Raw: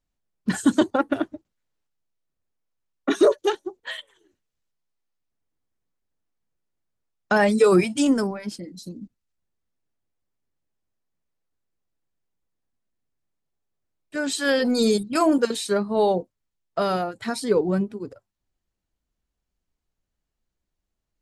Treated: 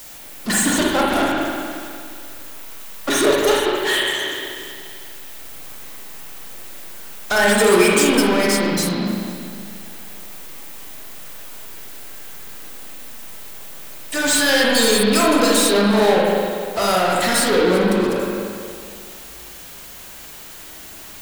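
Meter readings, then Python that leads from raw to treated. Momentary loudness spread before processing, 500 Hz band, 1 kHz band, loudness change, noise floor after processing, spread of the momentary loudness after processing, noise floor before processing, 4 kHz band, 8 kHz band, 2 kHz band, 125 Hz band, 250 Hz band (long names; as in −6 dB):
16 LU, +5.0 dB, +7.5 dB, +5.0 dB, −38 dBFS, 21 LU, −82 dBFS, +13.0 dB, +15.0 dB, +11.0 dB, +5.5 dB, +4.0 dB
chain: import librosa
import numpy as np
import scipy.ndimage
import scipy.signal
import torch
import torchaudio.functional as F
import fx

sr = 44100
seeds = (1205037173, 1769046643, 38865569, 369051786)

y = fx.riaa(x, sr, side='recording')
y = fx.power_curve(y, sr, exponent=0.35)
y = fx.rev_spring(y, sr, rt60_s=2.2, pass_ms=(39, 59), chirp_ms=25, drr_db=-4.0)
y = y * 10.0 ** (-7.5 / 20.0)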